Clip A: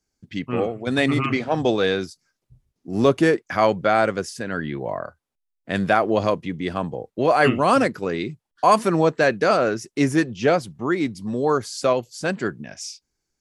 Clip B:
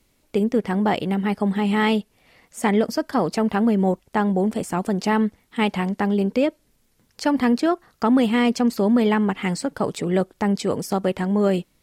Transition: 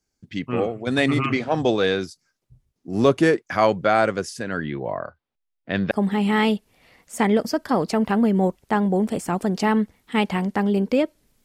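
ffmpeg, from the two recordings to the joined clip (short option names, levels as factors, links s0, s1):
-filter_complex "[0:a]asettb=1/sr,asplit=3[s0][s1][s2];[s0]atrim=end=4.644[s3];[s1]atrim=start=4.64:end=5.91,asetpts=PTS-STARTPTS,afade=t=in:d=0.004:c=qsin,afade=t=out:st=1.266:d=0.004:c=qsin,lowpass=f=4400:w=0.5412,lowpass=f=4400:w=1.3066[s4];[s2]atrim=start=5.906[s5];[s3][s4]acrossfade=d=0.004:c1=hsin:c2=qsin[s6];[s6][s5]acrossfade=d=0.004:c1=qsin:c2=hsin,apad=whole_dur=11.44,atrim=end=11.44,atrim=end=5.912[s7];[1:a]atrim=start=1.348:end=6.88[s8];[s7][s8]acrossfade=d=0.004:c1=hsin:c2=hsin"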